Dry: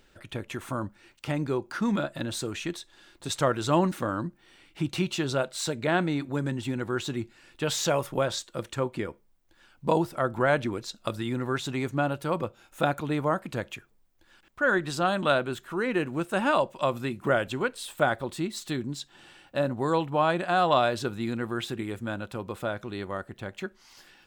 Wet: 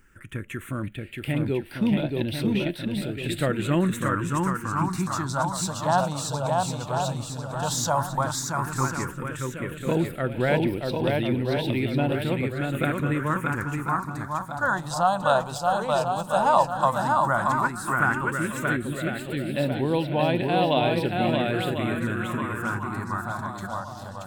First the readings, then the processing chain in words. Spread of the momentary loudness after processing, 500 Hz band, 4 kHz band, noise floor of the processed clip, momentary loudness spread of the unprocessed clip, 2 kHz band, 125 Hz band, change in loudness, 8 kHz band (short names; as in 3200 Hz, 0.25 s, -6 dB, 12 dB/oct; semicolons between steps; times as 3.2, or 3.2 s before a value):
9 LU, +1.5 dB, +1.0 dB, -39 dBFS, 12 LU, +3.0 dB, +6.0 dB, +3.0 dB, +4.5 dB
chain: swung echo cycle 1.047 s, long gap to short 1.5:1, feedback 43%, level -3 dB; dynamic EQ 900 Hz, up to +6 dB, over -39 dBFS, Q 2.2; phaser stages 4, 0.11 Hz, lowest notch 330–1200 Hz; gain +3.5 dB